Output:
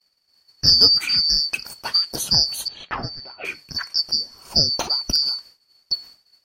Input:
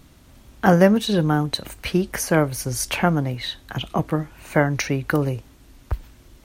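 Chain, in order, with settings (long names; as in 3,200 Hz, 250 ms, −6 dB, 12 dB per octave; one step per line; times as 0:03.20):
band-splitting scrambler in four parts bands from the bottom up 2341
0:02.68–0:03.45: low-pass filter 3,000 Hz 24 dB per octave
downward expander −38 dBFS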